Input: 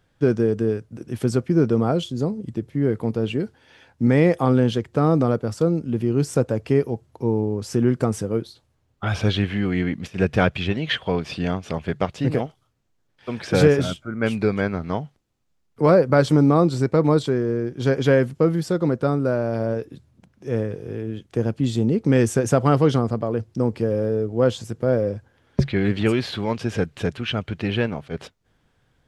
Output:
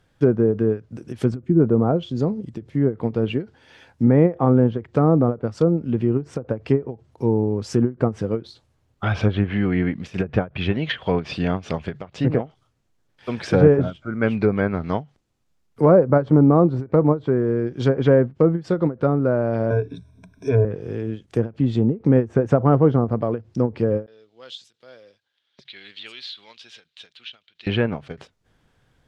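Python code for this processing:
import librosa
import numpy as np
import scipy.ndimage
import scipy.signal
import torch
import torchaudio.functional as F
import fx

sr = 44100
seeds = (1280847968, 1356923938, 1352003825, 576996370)

y = fx.spec_box(x, sr, start_s=1.34, length_s=0.26, low_hz=370.0, high_hz=6200.0, gain_db=-11)
y = fx.ripple_eq(y, sr, per_octave=1.6, db=18, at=(19.7, 20.65))
y = fx.bandpass_q(y, sr, hz=3700.0, q=3.5, at=(24.06, 27.67))
y = fx.env_lowpass_down(y, sr, base_hz=1100.0, full_db=-15.0)
y = fx.end_taper(y, sr, db_per_s=270.0)
y = y * 10.0 ** (2.0 / 20.0)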